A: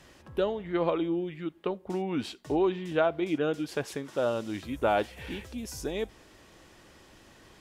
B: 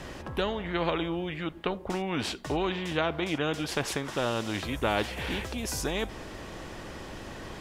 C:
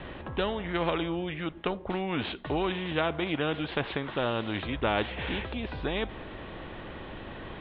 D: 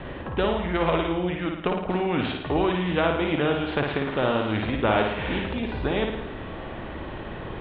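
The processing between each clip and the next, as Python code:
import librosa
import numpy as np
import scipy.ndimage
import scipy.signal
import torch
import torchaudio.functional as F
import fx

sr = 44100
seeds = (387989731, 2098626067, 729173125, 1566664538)

y1 = fx.tilt_eq(x, sr, slope=-2.0)
y1 = fx.spectral_comp(y1, sr, ratio=2.0)
y2 = scipy.signal.sosfilt(scipy.signal.butter(12, 3800.0, 'lowpass', fs=sr, output='sos'), y1)
y3 = fx.high_shelf(y2, sr, hz=3300.0, db=-9.5)
y3 = fx.room_flutter(y3, sr, wall_m=9.5, rt60_s=0.74)
y3 = F.gain(torch.from_numpy(y3), 5.0).numpy()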